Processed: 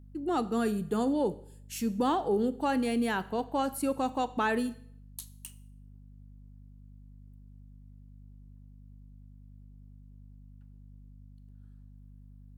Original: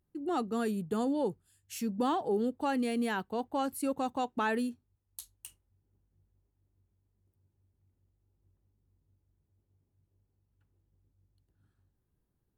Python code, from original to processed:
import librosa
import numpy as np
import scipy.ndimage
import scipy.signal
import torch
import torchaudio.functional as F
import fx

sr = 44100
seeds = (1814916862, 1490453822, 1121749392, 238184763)

y = fx.add_hum(x, sr, base_hz=50, snr_db=17)
y = fx.rev_schroeder(y, sr, rt60_s=0.61, comb_ms=27, drr_db=15.0)
y = y * librosa.db_to_amplitude(2.5)